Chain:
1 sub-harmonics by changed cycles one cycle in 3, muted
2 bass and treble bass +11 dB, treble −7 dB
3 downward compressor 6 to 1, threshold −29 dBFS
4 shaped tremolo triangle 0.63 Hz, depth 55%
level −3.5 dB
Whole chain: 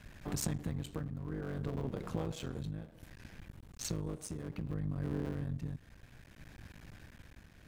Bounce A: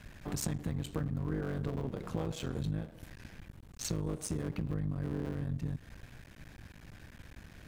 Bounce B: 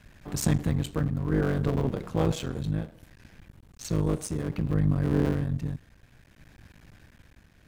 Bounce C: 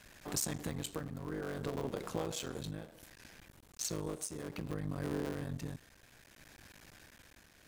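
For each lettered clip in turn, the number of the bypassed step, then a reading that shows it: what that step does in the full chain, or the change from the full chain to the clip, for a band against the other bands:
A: 4, change in momentary loudness spread −1 LU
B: 3, average gain reduction 7.5 dB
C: 2, 125 Hz band −8.0 dB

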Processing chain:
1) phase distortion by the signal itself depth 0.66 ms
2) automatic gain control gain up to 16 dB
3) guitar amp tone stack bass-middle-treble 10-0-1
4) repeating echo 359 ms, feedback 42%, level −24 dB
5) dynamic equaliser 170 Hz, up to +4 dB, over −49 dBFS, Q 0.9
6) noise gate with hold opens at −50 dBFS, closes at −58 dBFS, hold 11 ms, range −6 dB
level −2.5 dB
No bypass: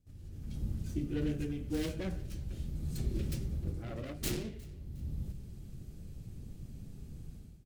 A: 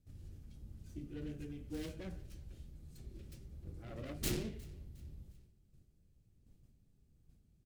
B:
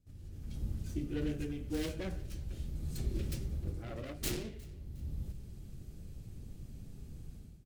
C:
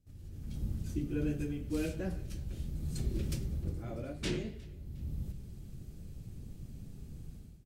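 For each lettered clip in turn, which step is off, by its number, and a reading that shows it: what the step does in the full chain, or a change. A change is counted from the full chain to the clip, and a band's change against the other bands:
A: 2, change in crest factor +7.5 dB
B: 5, 250 Hz band −2.0 dB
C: 1, 8 kHz band −3.0 dB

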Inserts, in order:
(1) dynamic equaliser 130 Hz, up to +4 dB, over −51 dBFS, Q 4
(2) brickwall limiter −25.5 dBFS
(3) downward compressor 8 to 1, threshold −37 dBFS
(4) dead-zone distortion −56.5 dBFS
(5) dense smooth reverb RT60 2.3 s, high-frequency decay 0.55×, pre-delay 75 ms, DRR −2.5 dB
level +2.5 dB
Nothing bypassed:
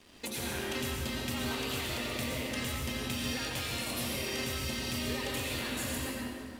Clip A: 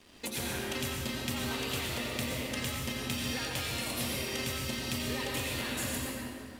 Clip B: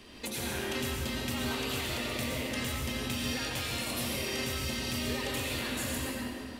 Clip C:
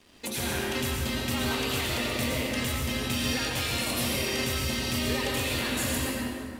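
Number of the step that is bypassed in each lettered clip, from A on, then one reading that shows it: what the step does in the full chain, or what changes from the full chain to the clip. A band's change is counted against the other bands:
2, average gain reduction 3.5 dB
4, distortion level −19 dB
3, average gain reduction 4.5 dB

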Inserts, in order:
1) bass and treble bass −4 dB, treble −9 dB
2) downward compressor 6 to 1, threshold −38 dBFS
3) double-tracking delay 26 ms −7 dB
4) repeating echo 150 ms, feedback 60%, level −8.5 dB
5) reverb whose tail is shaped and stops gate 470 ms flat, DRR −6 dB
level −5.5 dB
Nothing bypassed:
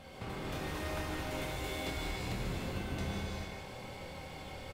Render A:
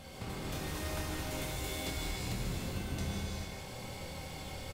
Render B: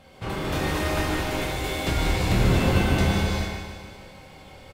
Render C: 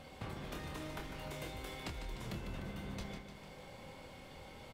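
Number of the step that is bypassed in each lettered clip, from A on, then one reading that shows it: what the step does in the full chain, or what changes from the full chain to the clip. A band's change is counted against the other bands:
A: 1, 8 kHz band +7.0 dB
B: 2, average gain reduction 8.5 dB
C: 5, echo-to-direct ratio 7.0 dB to −6.5 dB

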